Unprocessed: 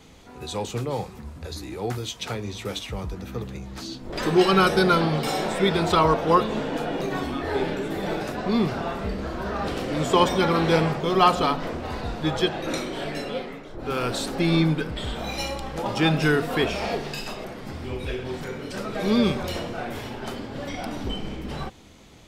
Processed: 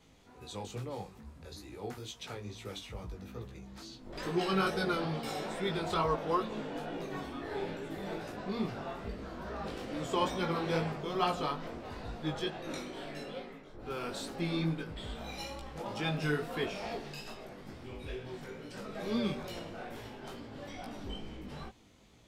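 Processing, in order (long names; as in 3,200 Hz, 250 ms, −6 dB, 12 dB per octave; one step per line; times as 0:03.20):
chorus effect 2.3 Hz, delay 17 ms, depth 3.7 ms
level −9 dB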